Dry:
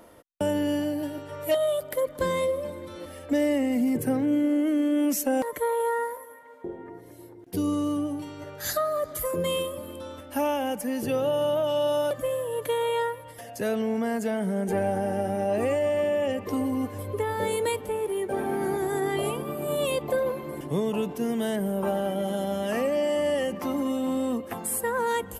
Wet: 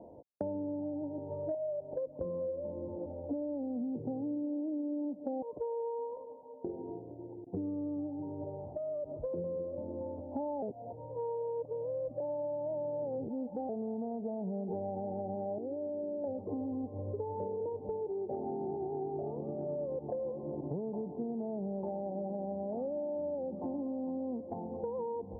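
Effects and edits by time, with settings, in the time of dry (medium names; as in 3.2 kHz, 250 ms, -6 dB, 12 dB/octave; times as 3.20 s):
8.09–9.23 s: compression, threshold -31 dBFS
10.62–13.69 s: reverse
15.58–16.24 s: band-pass filter 320 Hz, Q 1.7
whole clip: steep low-pass 890 Hz 72 dB/octave; compression 6:1, threshold -36 dBFS; high-pass 59 Hz; trim +1 dB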